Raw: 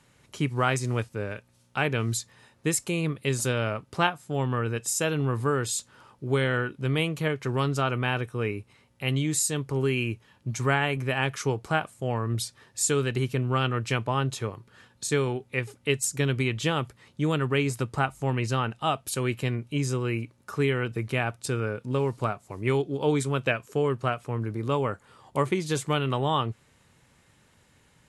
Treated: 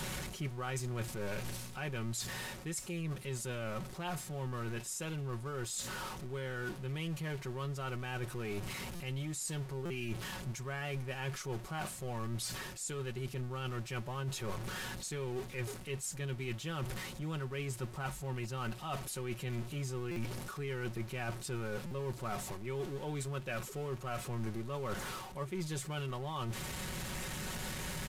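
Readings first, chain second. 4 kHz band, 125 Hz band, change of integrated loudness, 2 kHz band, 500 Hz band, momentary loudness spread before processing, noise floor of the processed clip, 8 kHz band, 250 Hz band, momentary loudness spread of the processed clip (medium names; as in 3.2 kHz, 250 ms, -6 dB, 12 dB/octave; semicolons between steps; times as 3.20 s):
-10.0 dB, -10.5 dB, -12.0 dB, -12.0 dB, -13.0 dB, 7 LU, -47 dBFS, -10.0 dB, -12.0 dB, 2 LU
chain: jump at every zero crossing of -30 dBFS; comb 5.4 ms, depth 55%; reverse; compression 10:1, threshold -30 dBFS, peak gain reduction 14.5 dB; reverse; resampled via 32 kHz; bass shelf 66 Hz +11 dB; gain riding 2 s; buffer glitch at 8.95/9.85/20.11/21.86 s, samples 256, times 8; trim -7 dB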